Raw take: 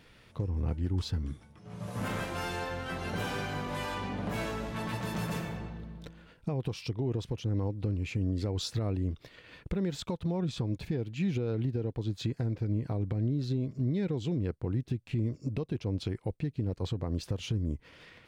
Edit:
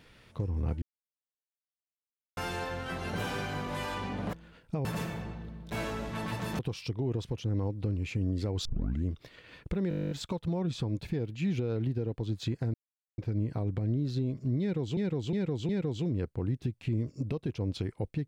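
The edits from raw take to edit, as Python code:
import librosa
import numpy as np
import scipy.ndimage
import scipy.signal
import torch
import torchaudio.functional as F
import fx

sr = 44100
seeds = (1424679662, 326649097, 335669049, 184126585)

y = fx.edit(x, sr, fx.silence(start_s=0.82, length_s=1.55),
    fx.swap(start_s=4.33, length_s=0.87, other_s=6.07, other_length_s=0.52),
    fx.tape_start(start_s=8.65, length_s=0.4),
    fx.stutter(start_s=9.89, slice_s=0.02, count=12),
    fx.insert_silence(at_s=12.52, length_s=0.44),
    fx.repeat(start_s=13.95, length_s=0.36, count=4), tone=tone)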